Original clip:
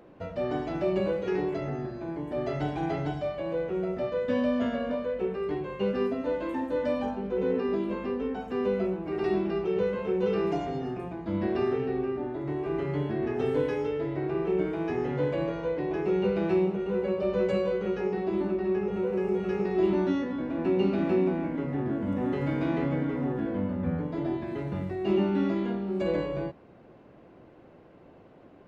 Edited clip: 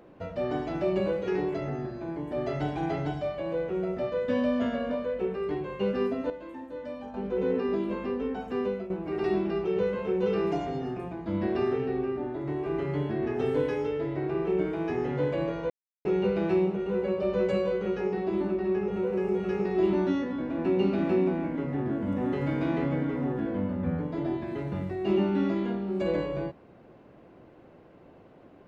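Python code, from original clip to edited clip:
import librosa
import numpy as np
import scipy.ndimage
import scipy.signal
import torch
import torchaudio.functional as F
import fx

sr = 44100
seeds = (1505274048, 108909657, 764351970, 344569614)

y = fx.edit(x, sr, fx.clip_gain(start_s=6.3, length_s=0.84, db=-10.0),
    fx.fade_out_to(start_s=8.58, length_s=0.32, floor_db=-13.5),
    fx.silence(start_s=15.7, length_s=0.35), tone=tone)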